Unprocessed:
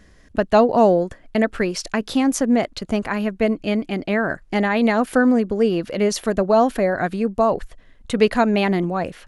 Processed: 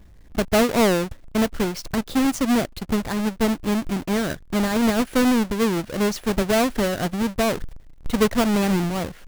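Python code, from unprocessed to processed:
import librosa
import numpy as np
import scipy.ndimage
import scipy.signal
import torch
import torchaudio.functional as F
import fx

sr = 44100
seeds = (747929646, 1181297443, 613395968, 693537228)

y = fx.halfwave_hold(x, sr)
y = fx.low_shelf(y, sr, hz=220.0, db=8.0)
y = y * 10.0 ** (-9.0 / 20.0)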